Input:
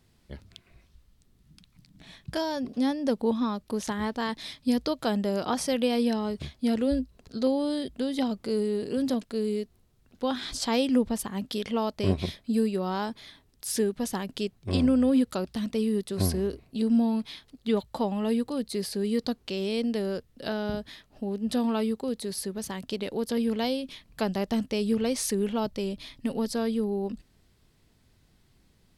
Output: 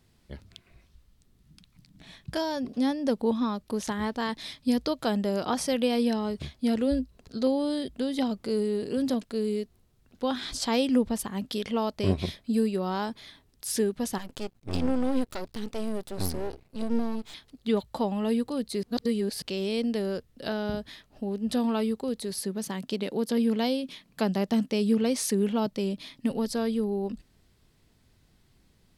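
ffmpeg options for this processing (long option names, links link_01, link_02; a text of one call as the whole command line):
ffmpeg -i in.wav -filter_complex "[0:a]asettb=1/sr,asplit=3[link_01][link_02][link_03];[link_01]atrim=end=14.184[link_04];[link_02]atrim=start=14.18:end=17.34,asetpts=PTS-STARTPTS,afade=type=in:duration=0.004:curve=qsin,afade=type=out:start_time=3.156:duration=0.004:curve=qsin,aeval=exprs='max(val(0),0)':channel_layout=same[link_05];[link_03]atrim=start=17.336[link_06];[link_04][link_05]acrossfade=duration=0.004:curve1=hsin:curve2=qsin[link_07];[link_07][link_06]acrossfade=duration=0.004:curve1=qsin:curve2=hsin,asettb=1/sr,asplit=3[link_08][link_09][link_10];[link_08]atrim=end=22.404[link_11];[link_09]atrim=start=22.4:end=26.31,asetpts=PTS-STARTPTS,afade=type=in:duration=0.004:curve=qsin,afade=type=out:start_time=3.906:duration=0.004:curve=qsin,lowshelf=frequency=110:width_type=q:width=1.5:gain=-13.5[link_12];[link_10]atrim=start=26.306[link_13];[link_11][link_12]acrossfade=duration=0.004:curve1=hsin:curve2=qsin[link_14];[link_14][link_13]acrossfade=duration=0.004:curve1=qsin:curve2=hsin,asplit=3[link_15][link_16][link_17];[link_15]atrim=end=18.832[link_18];[link_16]atrim=start=18.828:end=19.422,asetpts=PTS-STARTPTS,areverse[link_19];[link_17]atrim=start=19.418[link_20];[link_18][link_19]acrossfade=duration=0.004:curve1=hsin:curve2=hsin[link_21];[link_21][link_20]acrossfade=duration=0.004:curve1=hsin:curve2=hsin" out.wav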